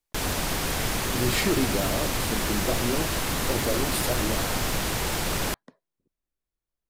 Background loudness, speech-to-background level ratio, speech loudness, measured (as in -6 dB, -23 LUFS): -27.0 LUFS, -3.5 dB, -30.5 LUFS